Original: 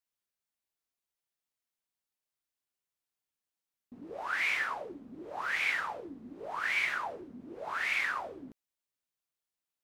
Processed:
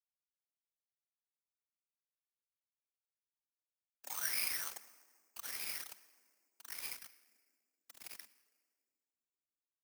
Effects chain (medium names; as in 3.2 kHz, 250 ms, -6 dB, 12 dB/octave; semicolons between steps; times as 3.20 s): Doppler pass-by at 2.62 s, 21 m/s, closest 1.7 m; treble shelf 5.3 kHz -3.5 dB; hum notches 50/100/150/200/250 Hz; doubling 22 ms -10.5 dB; bit crusher 10-bit; peaking EQ 8.4 kHz -7 dB 0.83 oct; simulated room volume 2200 m³, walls mixed, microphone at 0.47 m; whisper effect; frequency shift +210 Hz; careless resampling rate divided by 6×, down none, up zero stuff; trim +12 dB